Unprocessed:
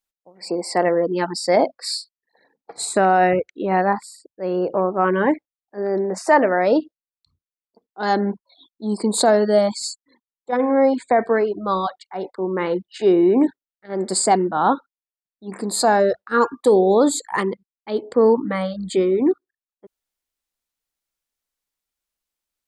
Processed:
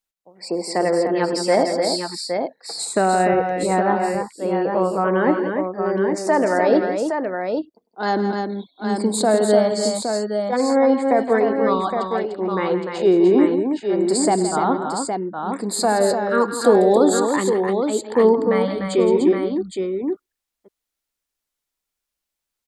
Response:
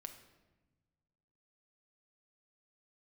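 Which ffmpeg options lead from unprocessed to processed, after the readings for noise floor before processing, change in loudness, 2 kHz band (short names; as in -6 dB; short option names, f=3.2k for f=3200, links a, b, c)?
under -85 dBFS, +0.5 dB, -0.5 dB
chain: -filter_complex "[0:a]acrossover=split=540[a][b];[b]alimiter=limit=-14dB:level=0:latency=1:release=200[c];[a][c]amix=inputs=2:normalize=0,aecho=1:1:102|167|297|815:0.106|0.282|0.501|0.501"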